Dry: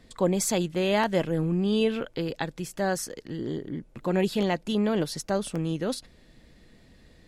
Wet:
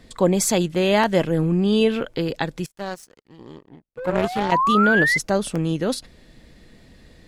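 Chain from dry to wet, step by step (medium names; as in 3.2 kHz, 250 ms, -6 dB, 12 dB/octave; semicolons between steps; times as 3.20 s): 3.97–5.18 s: painted sound rise 480–2100 Hz -25 dBFS; 2.66–4.52 s: power-law waveshaper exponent 2; trim +6 dB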